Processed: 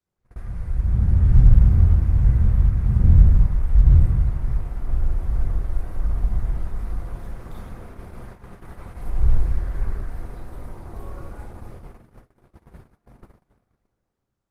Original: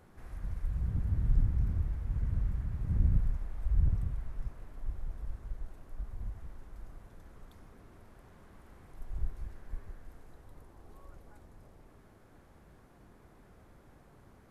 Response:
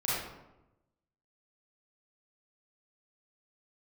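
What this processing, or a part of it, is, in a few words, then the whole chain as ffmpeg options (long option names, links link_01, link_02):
speakerphone in a meeting room: -filter_complex "[1:a]atrim=start_sample=2205[link_01];[0:a][link_01]afir=irnorm=-1:irlink=0,dynaudnorm=framelen=280:gausssize=7:maxgain=9.5dB,agate=range=-32dB:threshold=-36dB:ratio=16:detection=peak" -ar 48000 -c:a libopus -b:a 24k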